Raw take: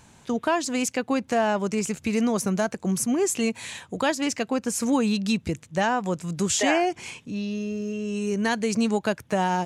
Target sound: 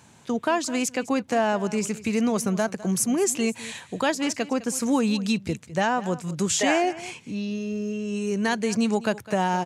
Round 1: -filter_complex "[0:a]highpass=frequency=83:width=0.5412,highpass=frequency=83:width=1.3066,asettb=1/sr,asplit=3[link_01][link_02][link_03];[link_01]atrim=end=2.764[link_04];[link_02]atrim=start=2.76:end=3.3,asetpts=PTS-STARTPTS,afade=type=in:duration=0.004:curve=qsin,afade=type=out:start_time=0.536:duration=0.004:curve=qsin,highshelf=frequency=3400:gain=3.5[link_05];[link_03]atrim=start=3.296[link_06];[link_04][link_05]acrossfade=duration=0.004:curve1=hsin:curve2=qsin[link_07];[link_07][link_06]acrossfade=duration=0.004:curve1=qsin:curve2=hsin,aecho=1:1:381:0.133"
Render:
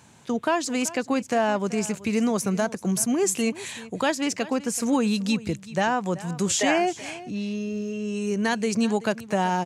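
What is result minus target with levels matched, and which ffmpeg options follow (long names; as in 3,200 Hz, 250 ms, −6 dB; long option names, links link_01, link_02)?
echo 175 ms late
-filter_complex "[0:a]highpass=frequency=83:width=0.5412,highpass=frequency=83:width=1.3066,asettb=1/sr,asplit=3[link_01][link_02][link_03];[link_01]atrim=end=2.764[link_04];[link_02]atrim=start=2.76:end=3.3,asetpts=PTS-STARTPTS,afade=type=in:duration=0.004:curve=qsin,afade=type=out:start_time=0.536:duration=0.004:curve=qsin,highshelf=frequency=3400:gain=3.5[link_05];[link_03]atrim=start=3.296[link_06];[link_04][link_05]acrossfade=duration=0.004:curve1=hsin:curve2=qsin[link_07];[link_07][link_06]acrossfade=duration=0.004:curve1=qsin:curve2=hsin,aecho=1:1:206:0.133"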